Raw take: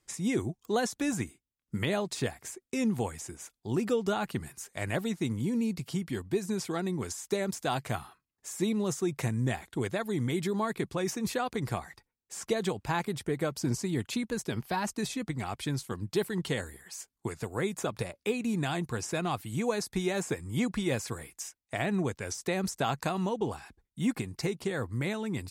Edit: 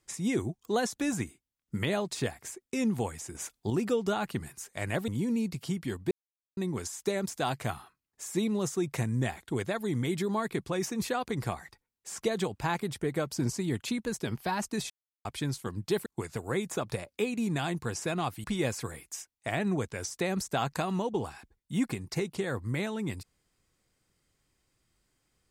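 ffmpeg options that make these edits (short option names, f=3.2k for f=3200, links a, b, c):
-filter_complex "[0:a]asplit=10[a][b][c][d][e][f][g][h][i][j];[a]atrim=end=3.352[k];[b]atrim=start=3.348:end=3.702,asetpts=PTS-STARTPTS,volume=6.5dB[l];[c]atrim=start=3.698:end=5.082[m];[d]atrim=start=5.328:end=6.36,asetpts=PTS-STARTPTS,afade=t=out:st=1.028:d=0.004:c=hsin[n];[e]atrim=start=6.36:end=6.82,asetpts=PTS-STARTPTS,volume=0[o];[f]atrim=start=6.82:end=15.15,asetpts=PTS-STARTPTS,afade=t=in:d=0.004:c=hsin,afade=t=out:st=8.326:d=0.004:c=hsin[p];[g]atrim=start=15.15:end=15.5,asetpts=PTS-STARTPTS,volume=0[q];[h]atrim=start=15.5:end=16.312,asetpts=PTS-STARTPTS,afade=t=in:d=0.004:c=hsin[r];[i]atrim=start=17.128:end=19.512[s];[j]atrim=start=20.708[t];[k][l]acrossfade=d=0.004:c1=hsin:c2=hsin[u];[u][m]acrossfade=d=0.004:c1=hsin:c2=hsin[v];[n][o][p][q][r]concat=n=5:v=0:a=1[w];[v][w]acrossfade=d=0.004:c1=hsin:c2=hsin[x];[x][s]acrossfade=d=0.004:c1=hsin:c2=hsin[y];[y][t]acrossfade=d=0.004:c1=hsin:c2=hsin"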